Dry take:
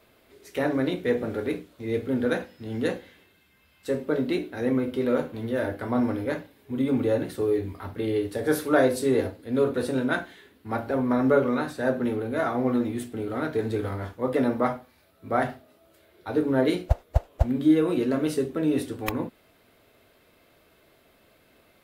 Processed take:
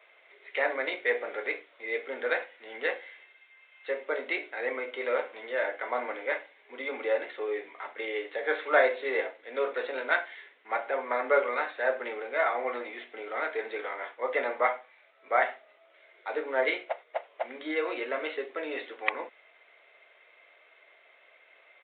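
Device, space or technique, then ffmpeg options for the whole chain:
musical greeting card: -af "aresample=8000,aresample=44100,highpass=f=520:w=0.5412,highpass=f=520:w=1.3066,equalizer=f=2100:t=o:w=0.39:g=11"

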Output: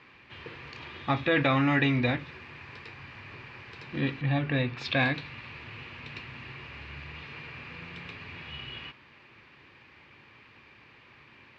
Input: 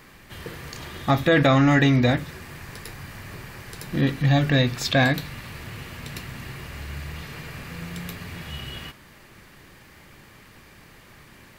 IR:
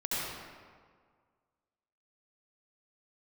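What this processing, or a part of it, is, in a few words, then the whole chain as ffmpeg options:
guitar cabinet: -filter_complex "[0:a]highpass=90,equalizer=f=180:t=q:w=4:g=-8,equalizer=f=650:t=q:w=4:g=-4,equalizer=f=990:t=q:w=4:g=4,equalizer=f=2500:t=q:w=4:g=9,lowpass=f=4300:w=0.5412,lowpass=f=4300:w=1.3066,asettb=1/sr,asplit=3[s0][s1][s2];[s0]atrim=end=4.214[s3];[s1]atrim=start=4.21:end=4.77,asetpts=PTS-STARTPTS,afade=t=in:d=0.004:c=qsin,afade=t=out:st=0.556:d=0.004:c=qsin,aemphasis=mode=reproduction:type=75kf[s4];[s2]atrim=start=4.766[s5];[s3][s4]acrossfade=d=0.004:c1=hsin:c2=qsin[s6];[s6][s5]acrossfade=d=0.004:c1=qsin:c2=hsin,volume=0.473"

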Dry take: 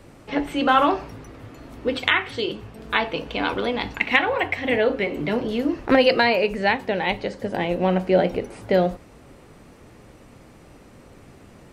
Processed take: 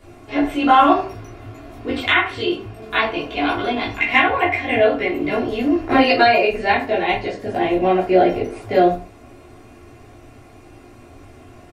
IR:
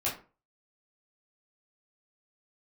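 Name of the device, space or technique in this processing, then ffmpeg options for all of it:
microphone above a desk: -filter_complex "[0:a]aecho=1:1:2.9:0.51[s0];[1:a]atrim=start_sample=2205[s1];[s0][s1]afir=irnorm=-1:irlink=0,volume=0.668"

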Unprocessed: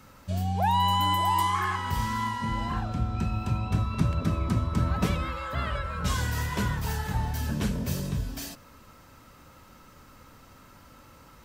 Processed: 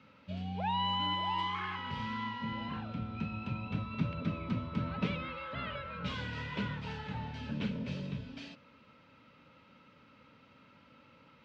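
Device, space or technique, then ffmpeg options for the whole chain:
kitchen radio: -af "highpass=170,equalizer=f=360:t=q:w=4:g=-9,equalizer=f=730:t=q:w=4:g=-10,equalizer=f=1100:t=q:w=4:g=-8,equalizer=f=1700:t=q:w=4:g=-7,equalizer=f=2500:t=q:w=4:g=3,lowpass=f=3600:w=0.5412,lowpass=f=3600:w=1.3066,volume=0.708"

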